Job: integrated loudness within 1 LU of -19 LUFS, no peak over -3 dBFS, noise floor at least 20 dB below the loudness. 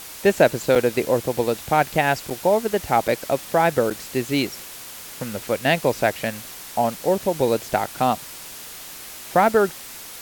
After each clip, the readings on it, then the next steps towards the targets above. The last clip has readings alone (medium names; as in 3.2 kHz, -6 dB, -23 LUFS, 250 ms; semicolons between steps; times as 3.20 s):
dropouts 4; longest dropout 6.4 ms; noise floor -38 dBFS; noise floor target -42 dBFS; loudness -21.5 LUFS; peak level -2.5 dBFS; loudness target -19.0 LUFS
-> interpolate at 0.75/2.30/3.08/3.90 s, 6.4 ms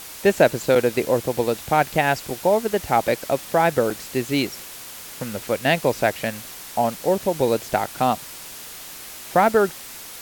dropouts 0; noise floor -38 dBFS; noise floor target -42 dBFS
-> noise print and reduce 6 dB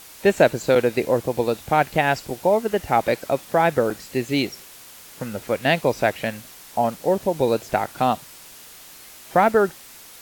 noise floor -44 dBFS; loudness -21.5 LUFS; peak level -2.5 dBFS; loudness target -19.0 LUFS
-> trim +2.5 dB; peak limiter -3 dBFS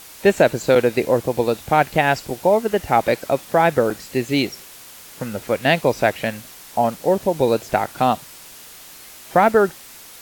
loudness -19.5 LUFS; peak level -3.0 dBFS; noise floor -42 dBFS